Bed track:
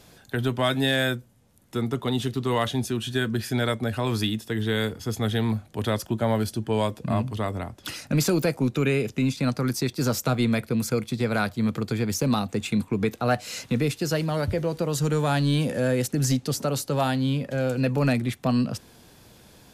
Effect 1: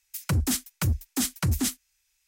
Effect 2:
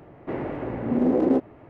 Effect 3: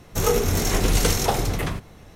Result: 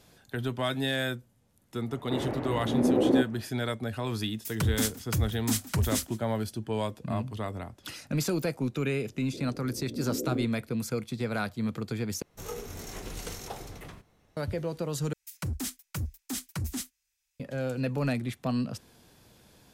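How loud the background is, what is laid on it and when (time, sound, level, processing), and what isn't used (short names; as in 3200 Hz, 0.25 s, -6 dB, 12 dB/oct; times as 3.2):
bed track -6.5 dB
1.83 add 2 -2.5 dB, fades 0.10 s
4.31 add 1 -3 dB + outdoor echo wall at 28 m, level -18 dB
9.05 add 2 -12.5 dB + steep low-pass 520 Hz
12.22 replace with 3 -17.5 dB + low shelf 150 Hz -4 dB
15.13 replace with 1 -8.5 dB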